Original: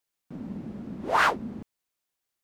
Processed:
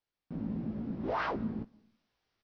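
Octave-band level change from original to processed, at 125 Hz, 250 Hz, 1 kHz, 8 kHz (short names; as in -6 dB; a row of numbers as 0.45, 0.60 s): +1.0 dB, +0.5 dB, -11.0 dB, under -25 dB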